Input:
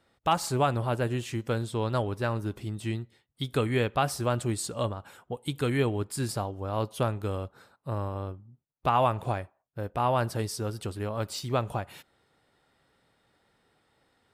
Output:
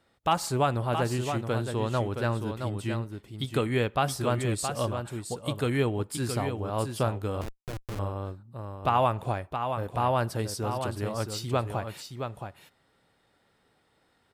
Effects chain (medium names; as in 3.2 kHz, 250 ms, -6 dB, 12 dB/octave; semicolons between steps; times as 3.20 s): delay 670 ms -7 dB; 7.41–7.99 s: Schmitt trigger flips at -30.5 dBFS